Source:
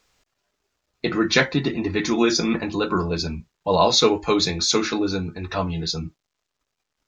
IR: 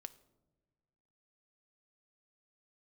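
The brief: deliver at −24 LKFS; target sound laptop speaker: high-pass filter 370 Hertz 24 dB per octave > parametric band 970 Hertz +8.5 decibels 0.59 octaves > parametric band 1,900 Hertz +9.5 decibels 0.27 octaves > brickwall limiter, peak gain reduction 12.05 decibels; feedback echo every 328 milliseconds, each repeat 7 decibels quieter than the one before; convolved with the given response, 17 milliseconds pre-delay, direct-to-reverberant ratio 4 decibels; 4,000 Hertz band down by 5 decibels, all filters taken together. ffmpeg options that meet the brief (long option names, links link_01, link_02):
-filter_complex "[0:a]equalizer=frequency=4000:width_type=o:gain=-6,aecho=1:1:328|656|984|1312|1640:0.447|0.201|0.0905|0.0407|0.0183,asplit=2[link_01][link_02];[1:a]atrim=start_sample=2205,adelay=17[link_03];[link_02][link_03]afir=irnorm=-1:irlink=0,volume=1.5dB[link_04];[link_01][link_04]amix=inputs=2:normalize=0,highpass=frequency=370:width=0.5412,highpass=frequency=370:width=1.3066,equalizer=frequency=970:width_type=o:width=0.59:gain=8.5,equalizer=frequency=1900:width_type=o:width=0.27:gain=9.5,volume=-2dB,alimiter=limit=-12.5dB:level=0:latency=1"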